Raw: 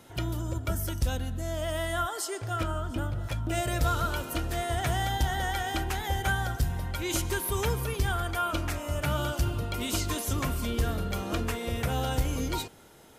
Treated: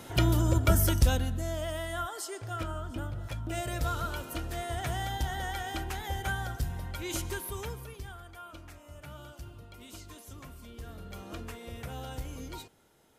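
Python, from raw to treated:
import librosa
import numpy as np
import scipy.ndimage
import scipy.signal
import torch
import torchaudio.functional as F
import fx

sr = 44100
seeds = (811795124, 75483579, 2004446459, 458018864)

y = fx.gain(x, sr, db=fx.line((0.86, 7.0), (1.82, -5.0), (7.28, -5.0), (8.22, -17.5), (10.73, -17.5), (11.2, -11.0)))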